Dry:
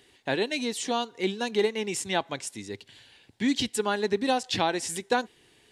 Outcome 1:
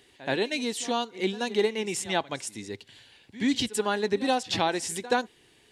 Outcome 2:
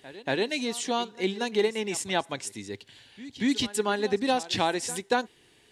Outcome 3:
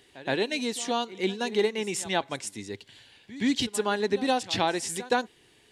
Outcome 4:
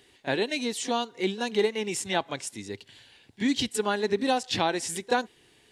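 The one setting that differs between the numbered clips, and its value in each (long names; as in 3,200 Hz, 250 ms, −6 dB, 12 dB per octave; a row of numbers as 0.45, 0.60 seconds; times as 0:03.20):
echo ahead of the sound, delay time: 77, 234, 121, 30 milliseconds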